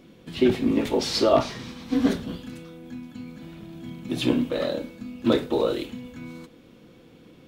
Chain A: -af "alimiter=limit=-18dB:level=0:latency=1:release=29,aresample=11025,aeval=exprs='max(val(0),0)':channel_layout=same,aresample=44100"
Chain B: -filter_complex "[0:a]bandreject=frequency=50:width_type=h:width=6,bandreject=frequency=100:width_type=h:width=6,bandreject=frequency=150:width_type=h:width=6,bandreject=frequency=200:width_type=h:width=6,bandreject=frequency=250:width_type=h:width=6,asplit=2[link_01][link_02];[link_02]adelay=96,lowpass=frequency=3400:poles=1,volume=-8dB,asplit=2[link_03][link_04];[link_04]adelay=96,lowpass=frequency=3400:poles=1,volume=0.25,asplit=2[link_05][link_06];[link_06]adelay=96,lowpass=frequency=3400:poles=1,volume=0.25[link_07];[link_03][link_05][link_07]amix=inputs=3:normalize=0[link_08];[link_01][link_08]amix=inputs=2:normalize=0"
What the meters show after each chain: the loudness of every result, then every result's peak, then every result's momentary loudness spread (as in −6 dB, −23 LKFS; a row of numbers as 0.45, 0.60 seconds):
−35.0, −24.5 LKFS; −18.0, −7.0 dBFS; 14, 21 LU